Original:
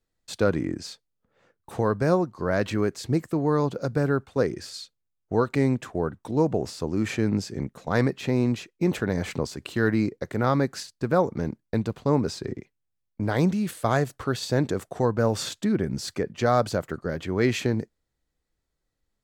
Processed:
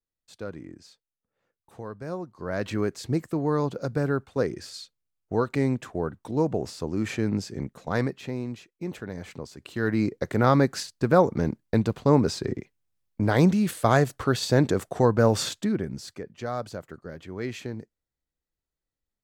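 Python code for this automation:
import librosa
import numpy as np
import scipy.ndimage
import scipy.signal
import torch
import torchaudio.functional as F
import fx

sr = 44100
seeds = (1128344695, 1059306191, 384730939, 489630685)

y = fx.gain(x, sr, db=fx.line((2.01, -14.0), (2.76, -2.0), (7.9, -2.0), (8.46, -10.0), (9.47, -10.0), (10.21, 3.0), (15.39, 3.0), (16.21, -10.0)))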